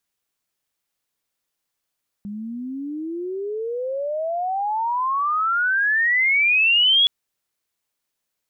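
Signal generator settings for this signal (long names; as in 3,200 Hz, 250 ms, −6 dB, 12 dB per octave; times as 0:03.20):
glide logarithmic 200 Hz → 3,400 Hz −28.5 dBFS → −12.5 dBFS 4.82 s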